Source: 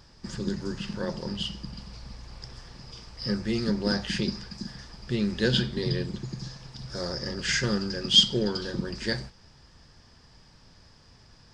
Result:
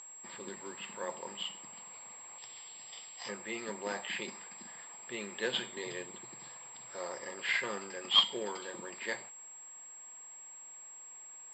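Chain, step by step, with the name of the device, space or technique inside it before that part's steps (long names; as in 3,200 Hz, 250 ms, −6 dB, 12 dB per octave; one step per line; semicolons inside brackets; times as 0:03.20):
0:02.38–0:03.29: drawn EQ curve 110 Hz 0 dB, 2,000 Hz −10 dB, 3,000 Hz +9 dB
toy sound module (linearly interpolated sample-rate reduction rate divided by 4×; switching amplifier with a slow clock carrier 7,600 Hz; loudspeaker in its box 640–4,800 Hz, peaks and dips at 1,000 Hz +5 dB, 1,500 Hz −8 dB, 2,200 Hz +6 dB, 4,100 Hz +3 dB)
level −1.5 dB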